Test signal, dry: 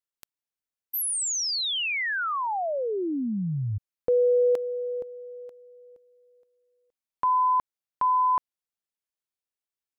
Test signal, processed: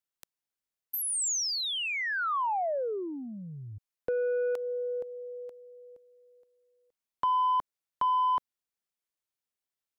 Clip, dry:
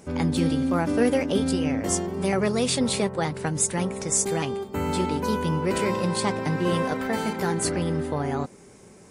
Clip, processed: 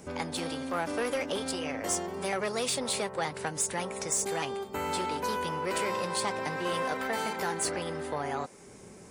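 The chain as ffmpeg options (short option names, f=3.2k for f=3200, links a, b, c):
-filter_complex "[0:a]asoftclip=type=tanh:threshold=-17.5dB,acrossover=split=450|1100|7600[a][b][c][d];[a]acompressor=threshold=-44dB:ratio=4[e];[b]acompressor=threshold=-30dB:ratio=4[f];[c]acompressor=threshold=-32dB:ratio=4[g];[d]acompressor=threshold=-33dB:ratio=4[h];[e][f][g][h]amix=inputs=4:normalize=0"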